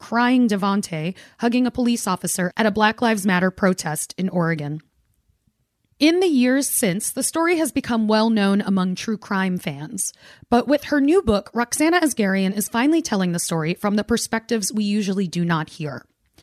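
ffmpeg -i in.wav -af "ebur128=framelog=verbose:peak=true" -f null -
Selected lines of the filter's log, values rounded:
Integrated loudness:
  I:         -20.4 LUFS
  Threshold: -30.8 LUFS
Loudness range:
  LRA:         2.7 LU
  Threshold: -40.7 LUFS
  LRA low:   -22.1 LUFS
  LRA high:  -19.3 LUFS
True peak:
  Peak:       -3.3 dBFS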